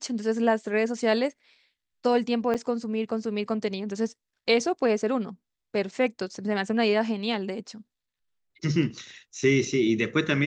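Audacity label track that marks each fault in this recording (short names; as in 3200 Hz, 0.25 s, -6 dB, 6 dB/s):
2.540000	2.550000	gap 6.6 ms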